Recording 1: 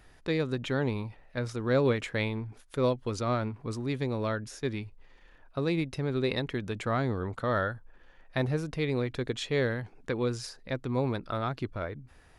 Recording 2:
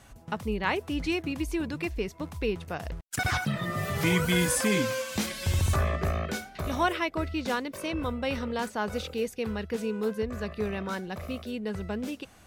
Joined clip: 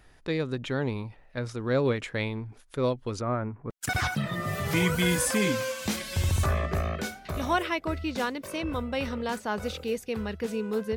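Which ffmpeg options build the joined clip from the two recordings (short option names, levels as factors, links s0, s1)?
-filter_complex "[0:a]asettb=1/sr,asplit=3[s0][s1][s2];[s0]atrim=end=3.214[s3];[s1]atrim=start=3.21:end=3.7,asetpts=PTS-STARTPTS,afade=t=in:d=0.004:c=qsin,afade=t=out:st=0.486:d=0.004:c=qsin,lowpass=f=2000:w=0.5412,lowpass=f=2000:w=1.3066[s4];[s2]atrim=start=3.696[s5];[s3][s4]acrossfade=d=0.004:c1=hsin:c2=qsin[s6];[s6][s5]acrossfade=d=0.004:c1=qsin:c2=hsin,apad=whole_dur=10.96,atrim=end=10.96,atrim=end=3.702[s7];[1:a]atrim=start=2.998:end=10.26[s8];[s7][s8]acrossfade=d=0.004:c1=hsin:c2=hsin"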